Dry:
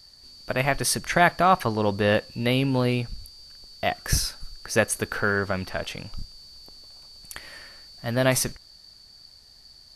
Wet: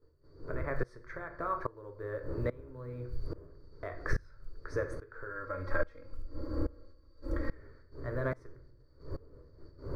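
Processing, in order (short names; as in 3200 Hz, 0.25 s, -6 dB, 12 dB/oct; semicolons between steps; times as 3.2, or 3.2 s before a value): wind noise 270 Hz -36 dBFS; LPF 1600 Hz 12 dB/oct; gate -49 dBFS, range -10 dB; 5.29–7.55 comb 3.7 ms, depth 98%; compressor 6:1, threshold -31 dBFS, peak gain reduction 16 dB; fixed phaser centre 770 Hz, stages 6; short-mantissa float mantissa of 6-bit; shoebox room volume 76 m³, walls mixed, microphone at 0.35 m; dB-ramp tremolo swelling 1.2 Hz, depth 23 dB; gain +6.5 dB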